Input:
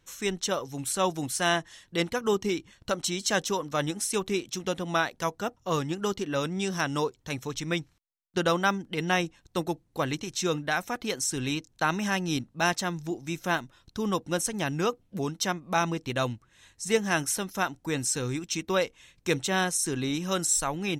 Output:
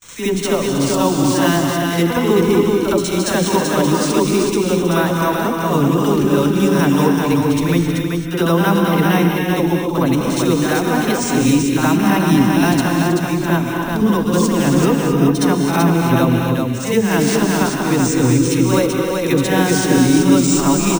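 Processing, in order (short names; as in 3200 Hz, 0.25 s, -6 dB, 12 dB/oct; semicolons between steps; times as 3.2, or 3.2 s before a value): dispersion lows, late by 44 ms, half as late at 750 Hz; in parallel at 0 dB: limiter -20 dBFS, peak gain reduction 7.5 dB; on the sum: echo 0.383 s -4 dB; gate with hold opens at -29 dBFS; small resonant body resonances 270/970 Hz, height 7 dB; reverse echo 65 ms -6 dB; careless resampling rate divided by 3×, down none, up hold; low shelf 420 Hz +9.5 dB; non-linear reverb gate 0.29 s rising, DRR 2.5 dB; gain -1 dB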